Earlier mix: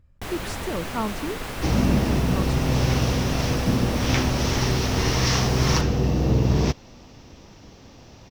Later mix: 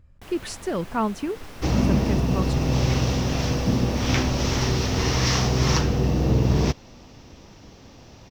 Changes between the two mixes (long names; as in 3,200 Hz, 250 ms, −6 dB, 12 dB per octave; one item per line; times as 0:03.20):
speech +3.5 dB
first sound −11.0 dB